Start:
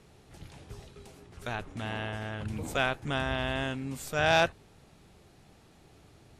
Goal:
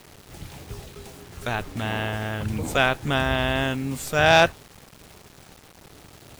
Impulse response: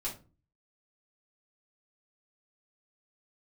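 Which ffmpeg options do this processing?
-af "acrusher=bits=8:mix=0:aa=0.000001,volume=8dB"

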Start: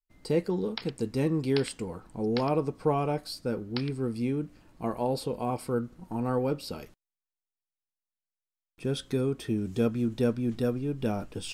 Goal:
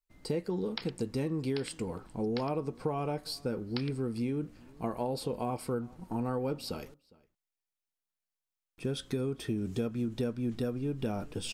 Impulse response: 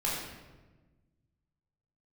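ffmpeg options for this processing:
-filter_complex "[0:a]acompressor=threshold=-29dB:ratio=6,asplit=2[link_01][link_02];[link_02]adelay=408.2,volume=-24dB,highshelf=frequency=4000:gain=-9.18[link_03];[link_01][link_03]amix=inputs=2:normalize=0"

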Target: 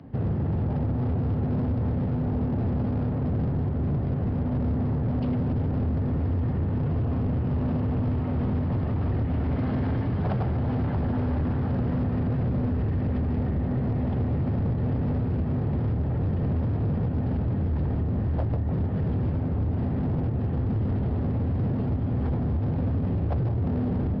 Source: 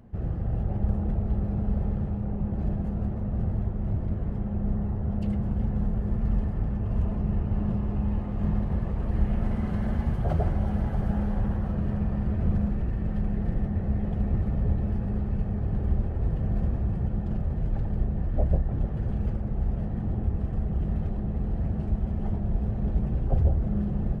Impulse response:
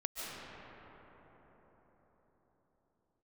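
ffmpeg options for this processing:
-af "acompressor=threshold=-25dB:ratio=4,afreqshift=43,aresample=11025,asoftclip=type=hard:threshold=-29dB,aresample=44100,volume=6.5dB"

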